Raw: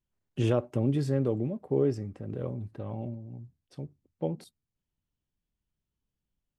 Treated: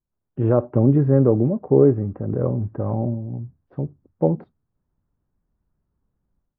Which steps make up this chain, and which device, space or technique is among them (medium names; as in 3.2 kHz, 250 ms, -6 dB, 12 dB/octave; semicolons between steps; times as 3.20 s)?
action camera in a waterproof case (low-pass 1.4 kHz 24 dB/octave; level rider gain up to 13 dB; AAC 48 kbps 22.05 kHz)